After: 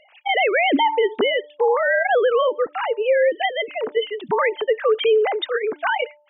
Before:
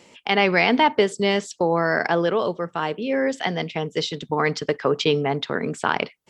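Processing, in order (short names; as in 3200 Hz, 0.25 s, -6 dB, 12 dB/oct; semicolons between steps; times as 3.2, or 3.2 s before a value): sine-wave speech; de-hum 296.2 Hz, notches 3; limiter -15 dBFS, peak gain reduction 9.5 dB; gain +4.5 dB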